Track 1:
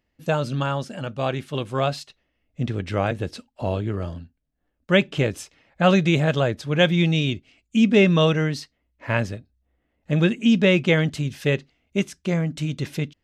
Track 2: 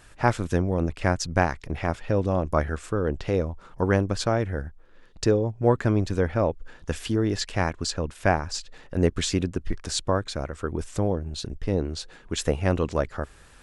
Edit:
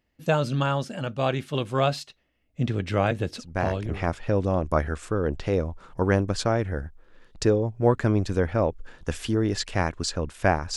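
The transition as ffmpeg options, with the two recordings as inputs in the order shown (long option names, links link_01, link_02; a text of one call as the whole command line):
ffmpeg -i cue0.wav -i cue1.wav -filter_complex "[0:a]apad=whole_dur=10.76,atrim=end=10.76,atrim=end=4.13,asetpts=PTS-STARTPTS[link_01];[1:a]atrim=start=1.14:end=8.57,asetpts=PTS-STARTPTS[link_02];[link_01][link_02]acrossfade=duration=0.8:curve1=qsin:curve2=qsin" out.wav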